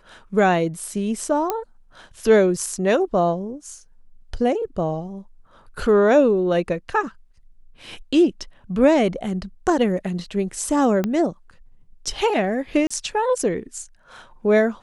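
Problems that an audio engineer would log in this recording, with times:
1.50 s: pop -8 dBFS
11.04 s: pop -11 dBFS
12.87–12.90 s: dropout 35 ms

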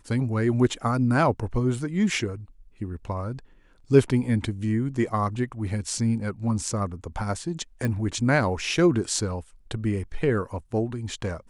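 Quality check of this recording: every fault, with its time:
7.85 s: pop -16 dBFS

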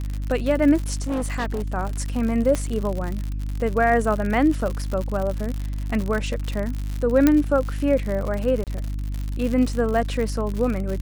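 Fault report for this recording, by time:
crackle 96 per s -26 dBFS
hum 50 Hz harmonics 6 -27 dBFS
0.94–1.62 s: clipped -21 dBFS
2.55 s: pop -11 dBFS
7.27 s: pop -4 dBFS
8.64–8.67 s: dropout 28 ms

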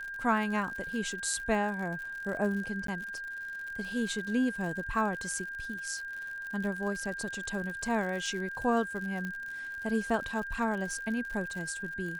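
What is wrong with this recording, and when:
crackle 79 per s -38 dBFS
whine 1.6 kHz -37 dBFS
2.87–2.88 s: dropout
9.25 s: pop -25 dBFS

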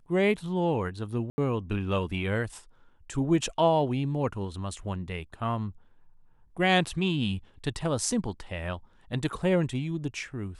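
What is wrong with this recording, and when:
1.30–1.38 s: dropout 80 ms

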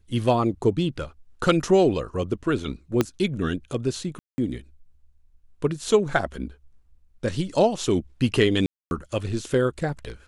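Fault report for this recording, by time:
3.01 s: pop -7 dBFS
4.19–4.38 s: dropout 190 ms
8.66–8.91 s: dropout 251 ms

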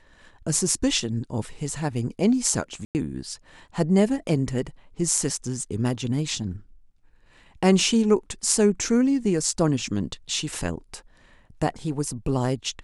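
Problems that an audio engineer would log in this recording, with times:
2.85–2.95 s: dropout 99 ms

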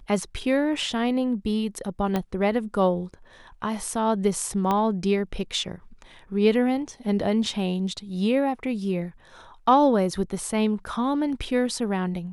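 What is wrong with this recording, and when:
2.16 s: pop -12 dBFS
4.71 s: pop -12 dBFS

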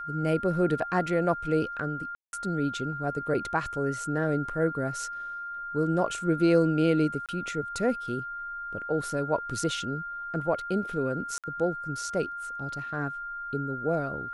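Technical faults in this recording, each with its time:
whine 1.4 kHz -34 dBFS
2.15–2.33 s: dropout 181 ms
7.26–7.29 s: dropout 27 ms
11.38–11.44 s: dropout 57 ms

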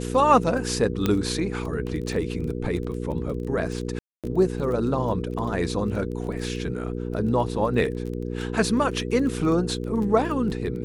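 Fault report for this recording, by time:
crackle 15 per s
hum 60 Hz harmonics 8 -30 dBFS
1.06 s: pop -9 dBFS
3.99–4.24 s: dropout 247 ms

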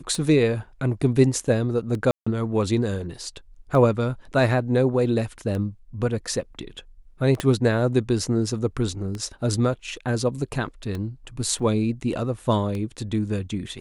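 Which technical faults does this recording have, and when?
tick 33 1/3 rpm -18 dBFS
2.11–2.27 s: dropout 155 ms
7.40 s: pop -11 dBFS
11.59 s: dropout 4.6 ms

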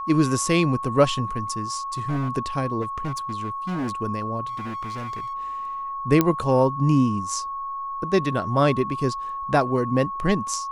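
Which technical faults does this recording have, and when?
whine 1.1 kHz -28 dBFS
1.93–2.30 s: clipped -21.5 dBFS
2.81–3.91 s: clipped -24 dBFS
4.47–5.34 s: clipped -28.5 dBFS
6.21 s: pop -5 dBFS

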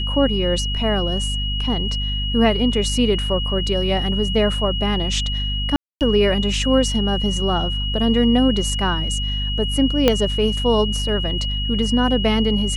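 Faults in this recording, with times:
hum 50 Hz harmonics 5 -24 dBFS
whine 2.9 kHz -25 dBFS
5.76–6.01 s: dropout 248 ms
10.08 s: pop -2 dBFS

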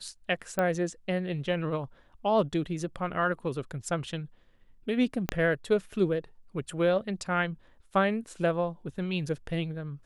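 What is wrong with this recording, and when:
0.59 s: pop -15 dBFS
5.29 s: pop -12 dBFS

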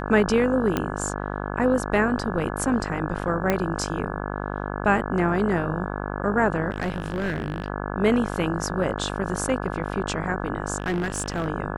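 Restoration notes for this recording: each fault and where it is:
buzz 50 Hz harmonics 34 -30 dBFS
0.77 s: pop -10 dBFS
3.50 s: pop -8 dBFS
6.70–7.68 s: clipped -21.5 dBFS
10.78–11.47 s: clipped -21 dBFS

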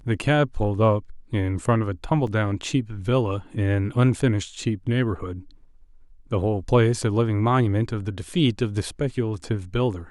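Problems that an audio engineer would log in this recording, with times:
2.27 s: dropout 3.5 ms

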